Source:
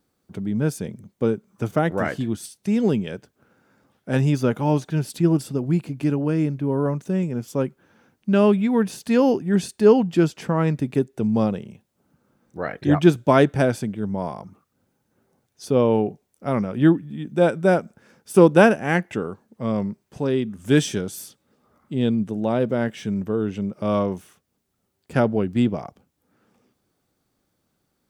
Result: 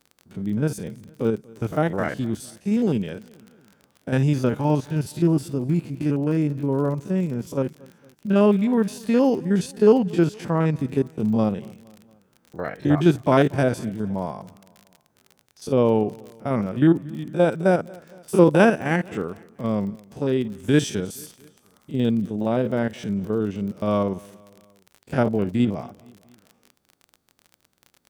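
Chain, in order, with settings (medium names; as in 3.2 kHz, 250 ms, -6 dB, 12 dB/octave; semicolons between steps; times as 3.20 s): spectrogram pixelated in time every 50 ms; feedback delay 232 ms, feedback 54%, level -24 dB; crackle 36 per s -34 dBFS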